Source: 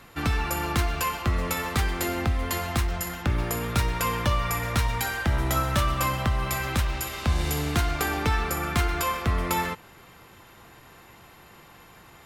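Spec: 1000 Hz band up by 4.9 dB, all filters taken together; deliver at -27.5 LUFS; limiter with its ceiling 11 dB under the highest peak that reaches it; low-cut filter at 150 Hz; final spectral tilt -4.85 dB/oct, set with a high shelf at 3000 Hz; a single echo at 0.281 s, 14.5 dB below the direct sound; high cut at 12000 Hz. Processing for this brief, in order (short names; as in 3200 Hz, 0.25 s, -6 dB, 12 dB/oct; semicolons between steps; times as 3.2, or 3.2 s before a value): HPF 150 Hz; LPF 12000 Hz; bell 1000 Hz +7 dB; high shelf 3000 Hz -8.5 dB; limiter -22 dBFS; echo 0.281 s -14.5 dB; gain +3 dB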